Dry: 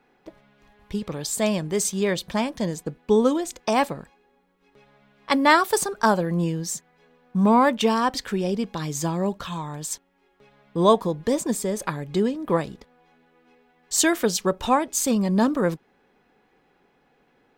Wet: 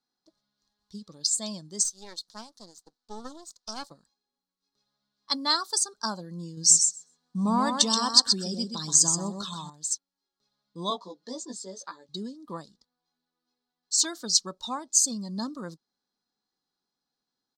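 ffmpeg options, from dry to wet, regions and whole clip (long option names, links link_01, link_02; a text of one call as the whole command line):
ffmpeg -i in.wav -filter_complex "[0:a]asettb=1/sr,asplit=3[link_01][link_02][link_03];[link_01]atrim=end=1.834[link_04];[link_02]atrim=start=1.83:end=3.91,asetpts=PTS-STARTPTS,afade=type=in:duration=0.004:curve=qsin,afade=type=out:start_time=2.076:duration=0.004:curve=qsin,highpass=330,aeval=exprs='max(val(0),0)':channel_layout=same[link_05];[link_03]atrim=start=3.906[link_06];[link_04][link_05]acrossfade=duration=0.004:curve1=hsin:curve2=qsin[link_07];[link_07][link_06]acrossfade=duration=0.004:curve1=qsin:curve2=hsin,asettb=1/sr,asplit=3[link_08][link_09][link_10];[link_08]atrim=end=6.574[link_11];[link_09]atrim=start=6.57:end=9.7,asetpts=PTS-STARTPTS,afade=type=in:duration=0.004:curve=qsin,afade=type=out:start_time=3.126:duration=0.004:curve=qsin,acontrast=47,equalizer=frequency=8100:width=3.1:gain=6,aecho=1:1:127|254|381:0.531|0.0903|0.0153,atrim=end_sample=138033[link_12];[link_10]atrim=start=9.696[link_13];[link_11][link_12]acrossfade=duration=0.004:curve1=hsin:curve2=qsin[link_14];[link_14][link_13]acrossfade=duration=0.004:curve1=qsin:curve2=hsin,asettb=1/sr,asplit=3[link_15][link_16][link_17];[link_15]atrim=end=10.904[link_18];[link_16]atrim=start=10.9:end=12.09,asetpts=PTS-STARTPTS,afade=type=in:duration=0.004:curve=qsin,afade=type=out:start_time=1.186:duration=0.004:curve=qsin,acrossover=split=220 6700:gain=0.0708 1 0.0794[link_19][link_20][link_21];[link_19][link_20][link_21]amix=inputs=3:normalize=0,asplit=2[link_22][link_23];[link_23]adelay=16,volume=-3dB[link_24];[link_22][link_24]amix=inputs=2:normalize=0,atrim=end_sample=52479[link_25];[link_17]atrim=start=12.086[link_26];[link_18][link_25]acrossfade=duration=0.004:curve1=hsin:curve2=qsin[link_27];[link_27][link_26]acrossfade=duration=0.004:curve1=qsin:curve2=hsin,asettb=1/sr,asplit=3[link_28][link_29][link_30];[link_28]atrim=end=12.714[link_31];[link_29]atrim=start=12.71:end=14.05,asetpts=PTS-STARTPTS,afade=type=in:duration=0.004:curve=qsin,afade=type=out:start_time=1.336:duration=0.004:curve=qsin,highshelf=frequency=5100:gain=-5.5,aeval=exprs='0.119*(abs(mod(val(0)/0.119+3,4)-2)-1)':channel_layout=same[link_32];[link_30]atrim=start=14.046[link_33];[link_31][link_32]acrossfade=duration=0.004:curve1=hsin:curve2=qsin[link_34];[link_34][link_33]acrossfade=duration=0.004:curve1=qsin:curve2=hsin,bass=frequency=250:gain=-14,treble=frequency=4000:gain=3,afftdn=noise_reduction=12:noise_floor=-29,firequalizer=gain_entry='entry(210,0);entry(430,-16);entry(1200,-7);entry(2400,-20);entry(4200,11);entry(13000,-8)':delay=0.05:min_phase=1,volume=-3dB" out.wav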